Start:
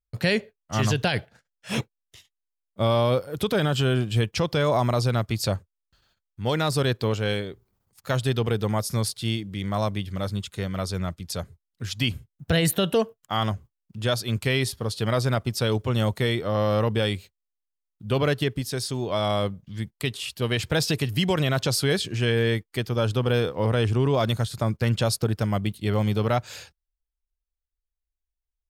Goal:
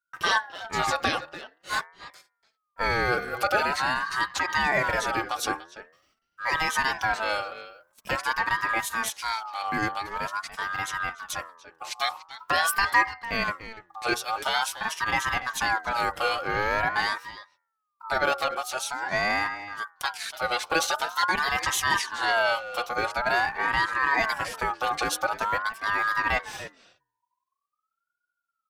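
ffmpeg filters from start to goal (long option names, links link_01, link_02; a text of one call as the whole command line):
ffmpeg -i in.wav -filter_complex "[0:a]aecho=1:1:4.5:0.66,bandreject=frequency=84.52:width_type=h:width=4,bandreject=frequency=169.04:width_type=h:width=4,bandreject=frequency=253.56:width_type=h:width=4,bandreject=frequency=338.08:width_type=h:width=4,bandreject=frequency=422.6:width_type=h:width=4,bandreject=frequency=507.12:width_type=h:width=4,bandreject=frequency=591.64:width_type=h:width=4,bandreject=frequency=676.16:width_type=h:width=4,bandreject=frequency=760.68:width_type=h:width=4,bandreject=frequency=845.2:width_type=h:width=4,bandreject=frequency=929.72:width_type=h:width=4,bandreject=frequency=1014.24:width_type=h:width=4,asplit=2[link_01][link_02];[link_02]adelay=290,highpass=300,lowpass=3400,asoftclip=type=hard:threshold=-17dB,volume=-12dB[link_03];[link_01][link_03]amix=inputs=2:normalize=0,aeval=exprs='val(0)*sin(2*PI*1200*n/s+1200*0.2/0.46*sin(2*PI*0.46*n/s))':channel_layout=same" out.wav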